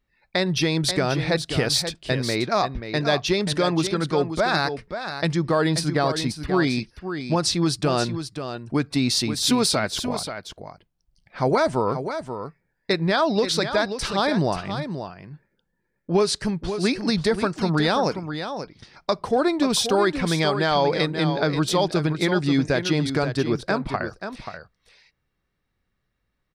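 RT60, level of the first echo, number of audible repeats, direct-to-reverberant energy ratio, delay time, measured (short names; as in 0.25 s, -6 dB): none, -9.0 dB, 1, none, 0.533 s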